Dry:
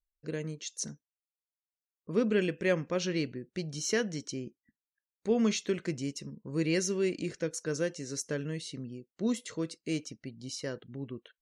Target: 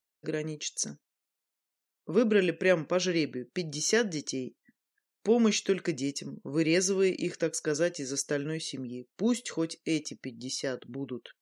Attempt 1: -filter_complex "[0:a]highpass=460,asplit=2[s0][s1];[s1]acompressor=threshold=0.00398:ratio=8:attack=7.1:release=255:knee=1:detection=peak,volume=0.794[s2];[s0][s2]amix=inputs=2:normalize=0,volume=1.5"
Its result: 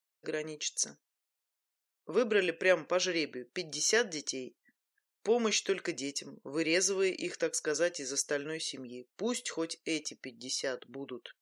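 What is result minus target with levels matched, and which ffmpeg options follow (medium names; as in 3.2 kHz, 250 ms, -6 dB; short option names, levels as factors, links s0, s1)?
250 Hz band -5.0 dB
-filter_complex "[0:a]highpass=190,asplit=2[s0][s1];[s1]acompressor=threshold=0.00398:ratio=8:attack=7.1:release=255:knee=1:detection=peak,volume=0.794[s2];[s0][s2]amix=inputs=2:normalize=0,volume=1.5"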